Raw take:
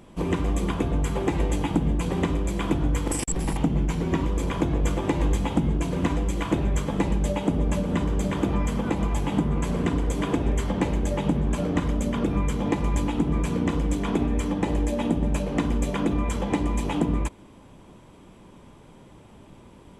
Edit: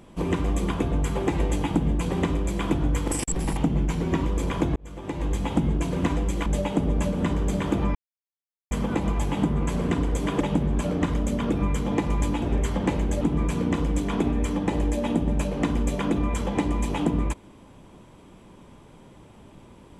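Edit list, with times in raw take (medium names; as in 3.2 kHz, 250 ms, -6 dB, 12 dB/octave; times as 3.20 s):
4.76–5.57 s: fade in
6.46–7.17 s: delete
8.66 s: insert silence 0.76 s
10.36–11.15 s: move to 13.16 s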